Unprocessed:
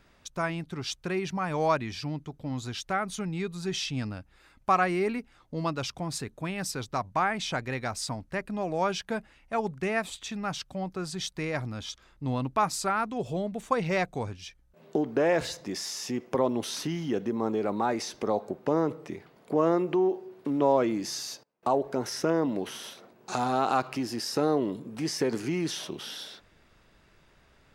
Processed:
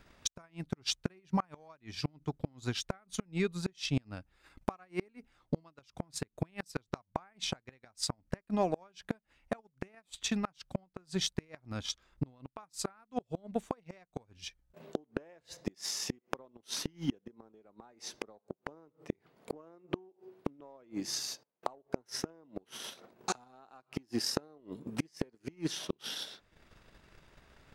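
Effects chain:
transient designer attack +9 dB, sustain −9 dB
gate with flip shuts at −19 dBFS, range −33 dB

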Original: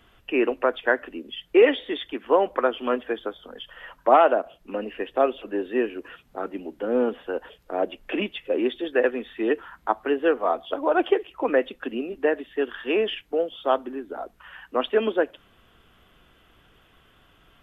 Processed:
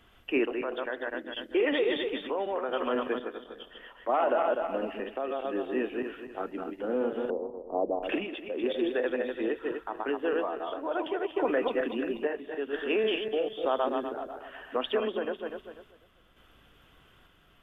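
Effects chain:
feedback delay that plays each chunk backwards 123 ms, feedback 54%, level −4 dB
brickwall limiter −15 dBFS, peak gain reduction 11 dB
0:07.30–0:08.03: Butterworth low-pass 1,100 Hz 72 dB per octave
sample-and-hold tremolo 2.2 Hz
level −2.5 dB

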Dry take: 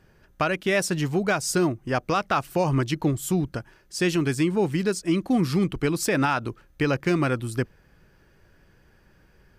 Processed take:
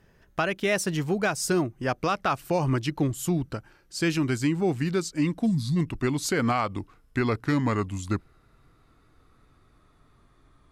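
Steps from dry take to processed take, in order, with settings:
gliding playback speed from 106% → 73%
gain on a spectral selection 0:05.46–0:05.76, 270–3,300 Hz −19 dB
level −2 dB

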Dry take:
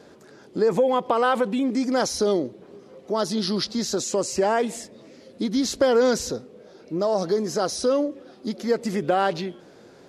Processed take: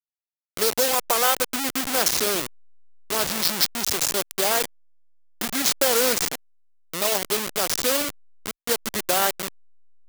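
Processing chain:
hold until the input has moved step −20 dBFS
spectral tilt +3.5 dB per octave

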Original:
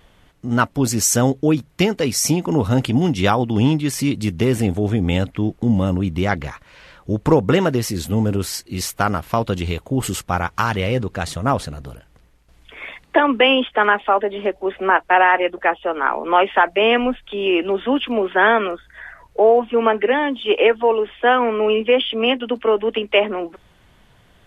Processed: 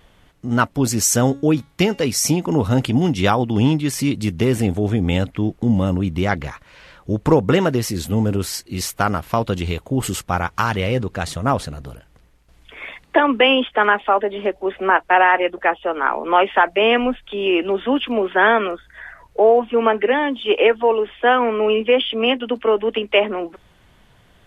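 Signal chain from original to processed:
0:01.15–0:02.02: hum removal 278.9 Hz, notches 36

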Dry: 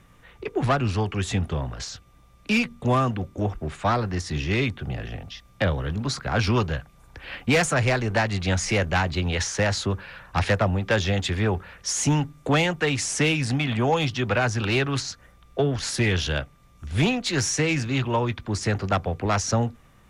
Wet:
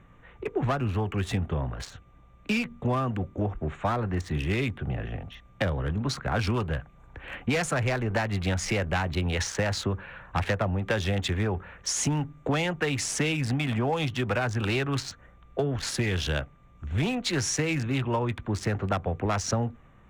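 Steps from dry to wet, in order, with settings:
adaptive Wiener filter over 9 samples
downward compressor, threshold −23 dBFS, peak gain reduction 7 dB

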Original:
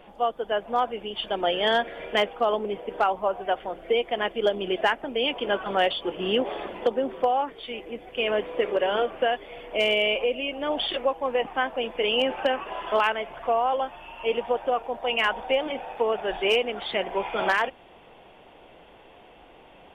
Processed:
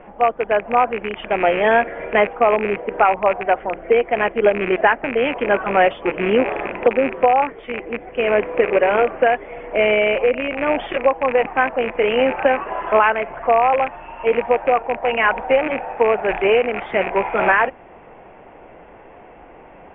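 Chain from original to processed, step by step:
loose part that buzzes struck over −43 dBFS, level −18 dBFS
Butterworth low-pass 2,300 Hz 36 dB per octave
level +8.5 dB

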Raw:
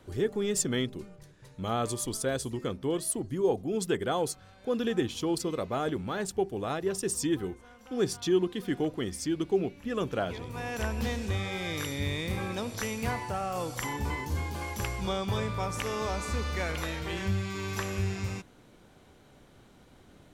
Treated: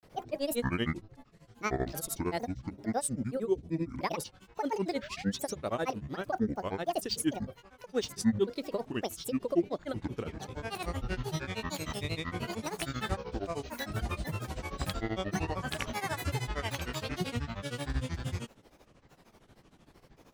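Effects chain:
sound drawn into the spectrogram rise, 0:04.85–0:05.57, 270–9,700 Hz −44 dBFS
granular cloud, grains 13 per second, pitch spread up and down by 12 semitones

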